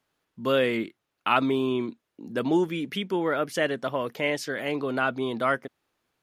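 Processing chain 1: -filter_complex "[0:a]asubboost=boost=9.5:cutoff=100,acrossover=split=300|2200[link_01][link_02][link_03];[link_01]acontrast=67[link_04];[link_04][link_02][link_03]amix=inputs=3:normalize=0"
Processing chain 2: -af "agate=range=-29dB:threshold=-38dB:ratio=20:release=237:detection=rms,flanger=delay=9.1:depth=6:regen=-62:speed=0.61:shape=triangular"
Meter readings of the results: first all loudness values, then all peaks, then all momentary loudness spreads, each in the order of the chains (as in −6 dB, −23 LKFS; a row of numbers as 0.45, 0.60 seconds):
−26.0, −31.0 LKFS; −8.5, −12.0 dBFS; 10, 10 LU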